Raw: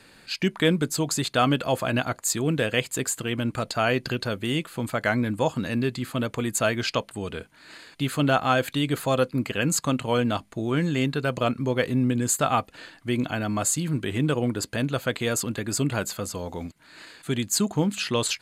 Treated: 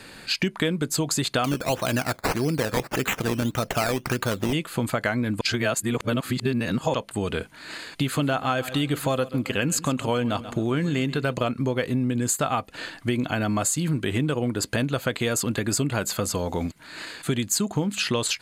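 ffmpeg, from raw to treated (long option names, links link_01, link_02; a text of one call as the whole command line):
ffmpeg -i in.wav -filter_complex "[0:a]asettb=1/sr,asplit=3[link_01][link_02][link_03];[link_01]atrim=end=1.444[link_04];[link_02]atrim=start=1.44:end=4.53,asetpts=PTS-STARTPTS,afade=type=in:duration=0.004:curve=qsin,afade=type=out:start_time=3.086:duration=0.004:curve=qsin,acrusher=samples=12:mix=1:aa=0.000001:lfo=1:lforange=7.2:lforate=1.7[link_05];[link_03]atrim=start=4.526[link_06];[link_04][link_05]acrossfade=duration=0.004:curve1=hsin:curve2=qsin[link_07];[link_07][link_06]acrossfade=duration=0.004:curve1=qsin:curve2=hsin,asettb=1/sr,asplit=3[link_08][link_09][link_10];[link_08]atrim=end=8.034[link_11];[link_09]atrim=start=8.03:end=11.34,asetpts=PTS-STARTPTS,afade=type=in:duration=0.004:curve=qsin,afade=type=out:start_time=3.306:duration=0.004:curve=qsin,aecho=1:1:133|266|399:0.126|0.0491|0.0191,atrim=end_sample=145971[link_12];[link_10]atrim=start=11.336[link_13];[link_11][link_12]acrossfade=duration=0.004:curve1=hsin:curve2=qsin[link_14];[link_14][link_13]acrossfade=duration=0.004:curve1=qsin:curve2=hsin,asplit=3[link_15][link_16][link_17];[link_15]atrim=end=5.412[link_18];[link_16]atrim=start=5.408:end=6.942,asetpts=PTS-STARTPTS,areverse[link_19];[link_17]atrim=start=6.938[link_20];[link_18][link_19]acrossfade=duration=0.004:curve1=hsin:curve2=hsin[link_21];[link_21][link_20]acrossfade=duration=0.004:curve1=hsin:curve2=hsin,acompressor=threshold=-30dB:ratio=6,volume=8.5dB" out.wav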